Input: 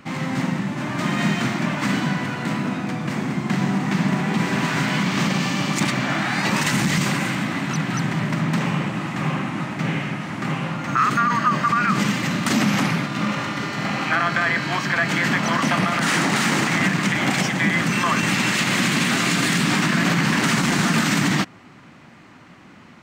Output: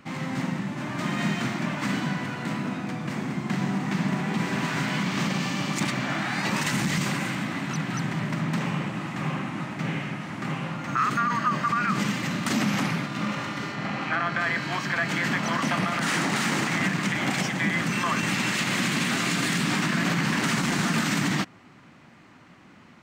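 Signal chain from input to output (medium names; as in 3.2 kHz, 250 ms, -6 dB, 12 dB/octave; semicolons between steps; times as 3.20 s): 13.72–14.40 s: treble shelf 5.9 kHz -10.5 dB; trim -5.5 dB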